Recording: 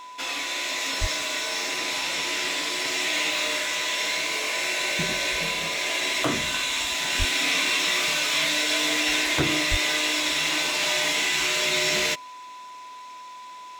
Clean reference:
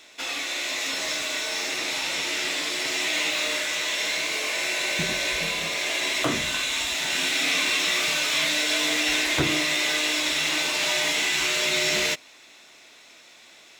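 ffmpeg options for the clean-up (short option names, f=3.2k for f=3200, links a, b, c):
-filter_complex "[0:a]bandreject=f=1k:w=30,asplit=3[a][b][c];[a]afade=t=out:st=1:d=0.02[d];[b]highpass=f=140:w=0.5412,highpass=f=140:w=1.3066,afade=t=in:st=1:d=0.02,afade=t=out:st=1.12:d=0.02[e];[c]afade=t=in:st=1.12:d=0.02[f];[d][e][f]amix=inputs=3:normalize=0,asplit=3[g][h][i];[g]afade=t=out:st=7.18:d=0.02[j];[h]highpass=f=140:w=0.5412,highpass=f=140:w=1.3066,afade=t=in:st=7.18:d=0.02,afade=t=out:st=7.3:d=0.02[k];[i]afade=t=in:st=7.3:d=0.02[l];[j][k][l]amix=inputs=3:normalize=0,asplit=3[m][n][o];[m]afade=t=out:st=9.7:d=0.02[p];[n]highpass=f=140:w=0.5412,highpass=f=140:w=1.3066,afade=t=in:st=9.7:d=0.02,afade=t=out:st=9.82:d=0.02[q];[o]afade=t=in:st=9.82:d=0.02[r];[p][q][r]amix=inputs=3:normalize=0"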